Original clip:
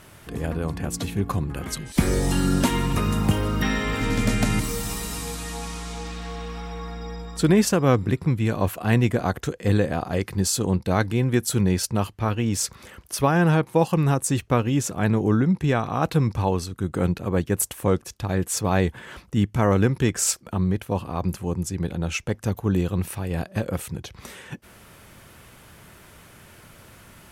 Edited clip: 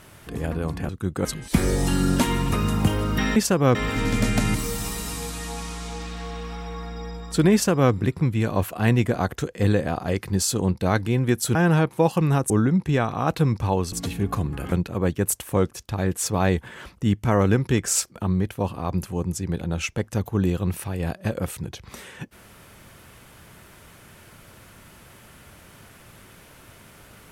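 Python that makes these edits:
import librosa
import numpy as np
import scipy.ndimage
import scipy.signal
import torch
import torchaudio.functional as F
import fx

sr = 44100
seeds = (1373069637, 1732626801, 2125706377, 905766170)

y = fx.edit(x, sr, fx.swap(start_s=0.89, length_s=0.8, other_s=16.67, other_length_s=0.36),
    fx.duplicate(start_s=7.58, length_s=0.39, to_s=3.8),
    fx.cut(start_s=11.6, length_s=1.71),
    fx.cut(start_s=14.26, length_s=0.99), tone=tone)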